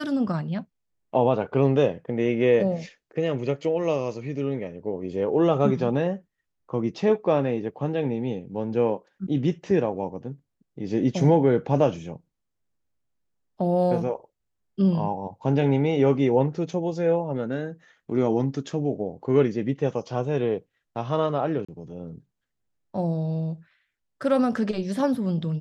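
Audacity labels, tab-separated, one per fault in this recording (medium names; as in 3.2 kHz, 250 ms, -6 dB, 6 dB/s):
21.650000	21.680000	dropout 35 ms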